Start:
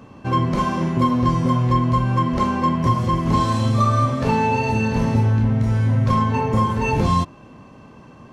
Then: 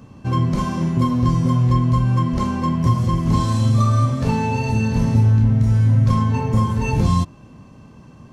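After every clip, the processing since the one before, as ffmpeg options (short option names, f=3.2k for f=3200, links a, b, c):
-af "bass=f=250:g=9,treble=f=4k:g=8,volume=-5dB"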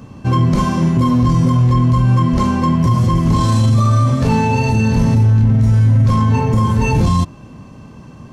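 -af "alimiter=limit=-12.5dB:level=0:latency=1:release=12,volume=6.5dB"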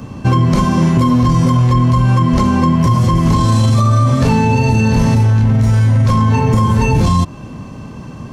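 -filter_complex "[0:a]acrossover=split=480|1000[a][b][c];[a]acompressor=threshold=-17dB:ratio=4[d];[b]acompressor=threshold=-31dB:ratio=4[e];[c]acompressor=threshold=-30dB:ratio=4[f];[d][e][f]amix=inputs=3:normalize=0,volume=7dB"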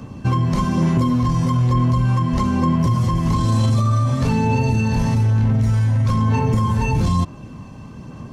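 -af "aphaser=in_gain=1:out_gain=1:delay=1.2:decay=0.24:speed=1.1:type=sinusoidal,volume=-7.5dB"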